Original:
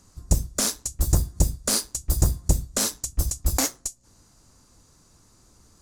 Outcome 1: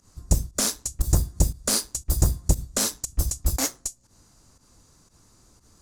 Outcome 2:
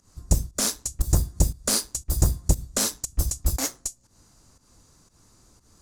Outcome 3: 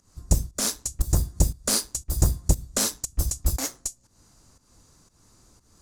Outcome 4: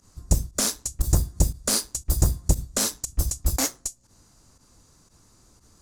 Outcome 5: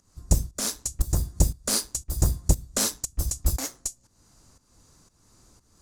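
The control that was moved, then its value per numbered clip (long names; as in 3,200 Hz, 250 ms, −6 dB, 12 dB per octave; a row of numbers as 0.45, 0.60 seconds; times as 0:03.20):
fake sidechain pumping, release: 102, 165, 244, 68, 399 milliseconds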